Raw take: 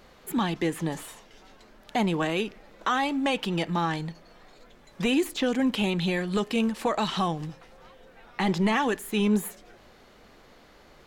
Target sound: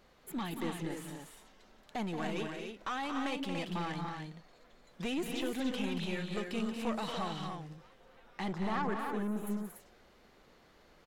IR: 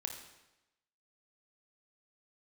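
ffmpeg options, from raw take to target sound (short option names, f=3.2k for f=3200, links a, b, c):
-filter_complex "[0:a]asettb=1/sr,asplit=3[a][b][c];[a]atrim=end=8.534[d];[b]atrim=start=8.53:end=9.47,asetpts=PTS-STARTPTS,afade=t=in:d=0.004:c=qsin,afade=t=out:st=0.936:d=0.004:c=qsin,highshelf=f=1.9k:t=q:w=3:g=-11[e];[c]atrim=start=9.466[f];[d][e]acrossfade=d=0.004:c1=hsin:c2=qsin[g];[g][f]acrossfade=d=0.004:c1=qsin:c2=hsin,aeval=exprs='(tanh(10*val(0)+0.35)-tanh(0.35))/10':c=same,asplit=2[h][i];[i]aecho=0:1:177.8|230.3|288.6:0.282|0.447|0.501[j];[h][j]amix=inputs=2:normalize=0,volume=-9dB"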